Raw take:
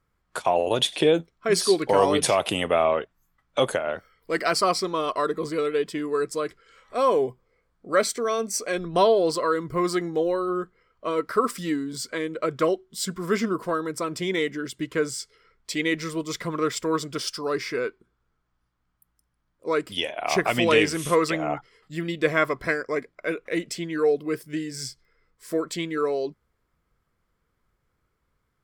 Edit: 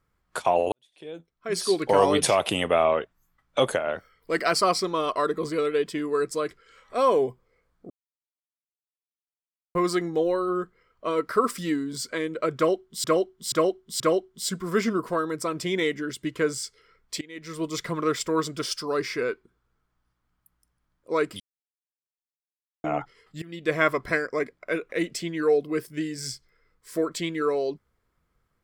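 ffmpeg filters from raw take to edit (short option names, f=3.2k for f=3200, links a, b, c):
-filter_complex "[0:a]asplit=11[a][b][c][d][e][f][g][h][i][j][k];[a]atrim=end=0.72,asetpts=PTS-STARTPTS,afade=t=out:st=0.716:d=0.004:c=hsin[l];[b]atrim=start=0.72:end=7.9,asetpts=PTS-STARTPTS,afade=t=in:d=1.19:c=qua,afade=t=out:st=7.176:d=0.004:c=hsin[m];[c]atrim=start=7.9:end=9.75,asetpts=PTS-STARTPTS,volume=0[n];[d]atrim=start=9.75:end=13.042,asetpts=PTS-STARTPTS,afade=t=in:d=0.004:c=hsin[o];[e]atrim=start=12.558:end=13.042[p];[f]atrim=start=12.558:end=13.042[q];[g]atrim=start=12.558:end=15.77,asetpts=PTS-STARTPTS,afade=t=out:st=3.208:d=0.004:c=hsin:silence=0.0668344[r];[h]atrim=start=15.77:end=19.96,asetpts=PTS-STARTPTS,afade=t=in:d=0.43:c=qua:silence=0.0668344,afade=t=out:st=4.186:d=0.004:c=hsin[s];[i]atrim=start=19.96:end=21.4,asetpts=PTS-STARTPTS,volume=0[t];[j]atrim=start=21.4:end=21.98,asetpts=PTS-STARTPTS,afade=t=in:d=0.004:c=hsin,afade=t=out:st=0.576:d=0.004:c=hsin:silence=0.0841395[u];[k]atrim=start=21.98,asetpts=PTS-STARTPTS,afade=t=in:d=0.4:silence=0.0841395[v];[l][m][n][o]concat=n=4:v=0:a=1[w];[w][p]acrossfade=d=0.004:c1=hsin:c2=hsin[x];[x][q]acrossfade=d=0.004:c1=hsin:c2=hsin[y];[r][s][t][u][v]concat=n=5:v=0:a=1[z];[y][z]acrossfade=d=0.004:c1=hsin:c2=hsin"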